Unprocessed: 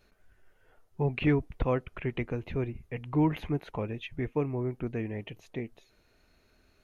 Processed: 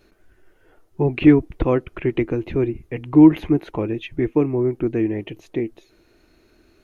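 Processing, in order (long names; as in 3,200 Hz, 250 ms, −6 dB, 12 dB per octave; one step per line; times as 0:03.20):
parametric band 330 Hz +13 dB 0.46 octaves
level +6.5 dB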